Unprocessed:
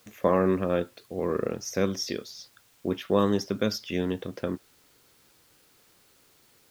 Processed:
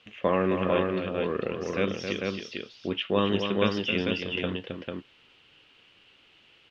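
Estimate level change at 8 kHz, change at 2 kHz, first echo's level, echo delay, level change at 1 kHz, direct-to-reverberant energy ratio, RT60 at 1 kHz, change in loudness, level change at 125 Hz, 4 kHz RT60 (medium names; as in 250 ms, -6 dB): under -10 dB, +6.5 dB, -7.5 dB, 267 ms, +0.5 dB, no reverb, no reverb, 0.0 dB, -0.5 dB, no reverb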